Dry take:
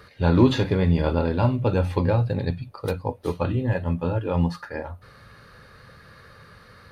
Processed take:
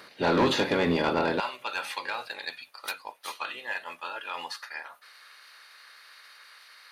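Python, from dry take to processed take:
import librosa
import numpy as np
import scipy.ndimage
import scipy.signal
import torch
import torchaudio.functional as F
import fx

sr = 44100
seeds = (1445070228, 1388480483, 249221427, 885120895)

y = fx.spec_clip(x, sr, under_db=15)
y = fx.highpass(y, sr, hz=fx.steps((0.0, 210.0), (1.4, 1500.0)), slope=12)
y = 10.0 ** (-17.0 / 20.0) * np.tanh(y / 10.0 ** (-17.0 / 20.0))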